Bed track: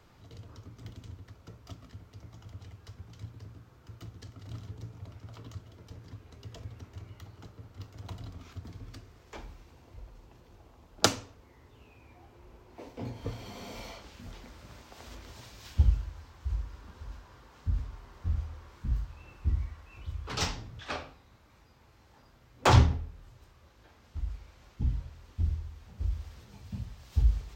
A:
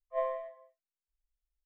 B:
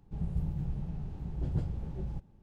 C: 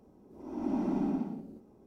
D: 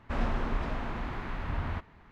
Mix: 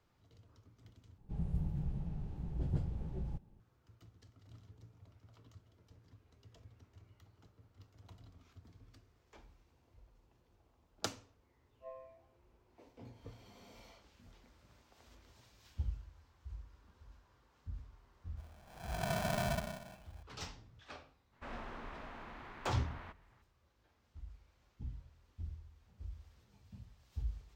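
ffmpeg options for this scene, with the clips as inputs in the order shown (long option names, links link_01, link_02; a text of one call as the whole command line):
ffmpeg -i bed.wav -i cue0.wav -i cue1.wav -i cue2.wav -i cue3.wav -filter_complex "[0:a]volume=-15dB[link_01];[1:a]equalizer=frequency=3000:width=0.52:gain=-9.5[link_02];[3:a]aeval=exprs='val(0)*sgn(sin(2*PI*410*n/s))':channel_layout=same[link_03];[4:a]lowshelf=frequency=260:gain=-10[link_04];[link_01]asplit=2[link_05][link_06];[link_05]atrim=end=1.184[link_07];[2:a]atrim=end=2.42,asetpts=PTS-STARTPTS,volume=-3.5dB[link_08];[link_06]atrim=start=3.596[link_09];[link_02]atrim=end=1.65,asetpts=PTS-STARTPTS,volume=-16dB,afade=type=in:duration=0.004:curve=hsin,afade=type=out:start_time=1.646:duration=0.004:curve=hsin,adelay=11690[link_10];[link_03]atrim=end=1.86,asetpts=PTS-STARTPTS,volume=-5dB,afade=type=in:duration=0.004:curve=hsin,afade=type=out:start_time=1.856:duration=0.004:curve=hsin,adelay=18370[link_11];[link_04]atrim=end=2.11,asetpts=PTS-STARTPTS,volume=-10.5dB,afade=type=in:duration=0.02,afade=type=out:start_time=2.09:duration=0.02,adelay=940212S[link_12];[link_07][link_08]acrossfade=duration=0.004:curve1=hsin:curve2=hsin[link_13];[link_13][link_09]acrossfade=duration=0.004:curve1=hsin:curve2=hsin[link_14];[link_14][link_10][link_11][link_12]amix=inputs=4:normalize=0" out.wav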